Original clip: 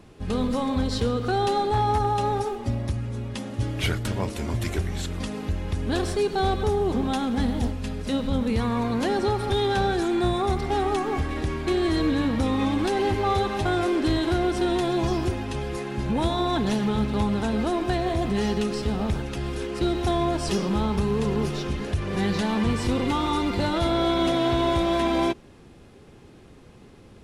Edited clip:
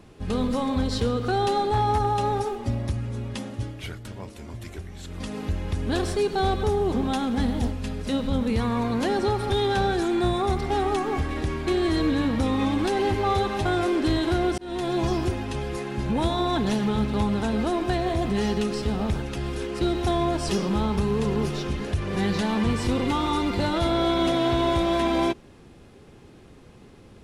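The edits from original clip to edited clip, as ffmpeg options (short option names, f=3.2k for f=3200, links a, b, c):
-filter_complex "[0:a]asplit=4[a][b][c][d];[a]atrim=end=3.8,asetpts=PTS-STARTPTS,afade=t=out:st=3.41:d=0.39:silence=0.298538[e];[b]atrim=start=3.8:end=5,asetpts=PTS-STARTPTS,volume=-10.5dB[f];[c]atrim=start=5:end=14.58,asetpts=PTS-STARTPTS,afade=t=in:d=0.39:silence=0.298538,afade=t=out:st=9.576:d=0.004:c=hsin[g];[d]atrim=start=14.58,asetpts=PTS-STARTPTS,afade=t=in:d=0.51:c=qsin[h];[e][f][g][h]concat=n=4:v=0:a=1"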